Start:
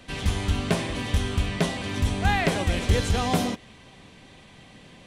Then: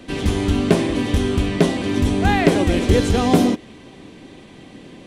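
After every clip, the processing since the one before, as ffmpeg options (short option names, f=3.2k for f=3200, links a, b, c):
-af "equalizer=f=320:t=o:w=1.2:g=12.5,volume=3dB"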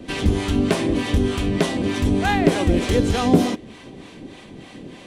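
-filter_complex "[0:a]asplit=2[a][b];[b]acompressor=threshold=-23dB:ratio=6,volume=0dB[c];[a][c]amix=inputs=2:normalize=0,acrossover=split=620[d][e];[d]aeval=exprs='val(0)*(1-0.7/2+0.7/2*cos(2*PI*3.3*n/s))':c=same[f];[e]aeval=exprs='val(0)*(1-0.7/2-0.7/2*cos(2*PI*3.3*n/s))':c=same[g];[f][g]amix=inputs=2:normalize=0,volume=-1dB"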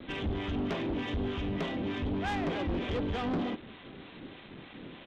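-af "aresample=8000,acrusher=bits=6:mix=0:aa=0.000001,aresample=44100,asoftclip=type=tanh:threshold=-19.5dB,volume=-8.5dB"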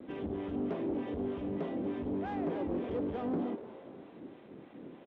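-filter_complex "[0:a]bandpass=f=370:t=q:w=0.84:csg=0,asplit=4[a][b][c][d];[b]adelay=242,afreqshift=140,volume=-15dB[e];[c]adelay=484,afreqshift=280,volume=-23.9dB[f];[d]adelay=726,afreqshift=420,volume=-32.7dB[g];[a][e][f][g]amix=inputs=4:normalize=0"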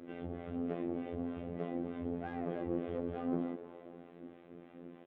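-af "asuperstop=centerf=940:order=4:qfactor=7.5,afftfilt=real='hypot(re,im)*cos(PI*b)':imag='0':win_size=2048:overlap=0.75,bass=f=250:g=-1,treble=f=4k:g=-10,volume=1dB"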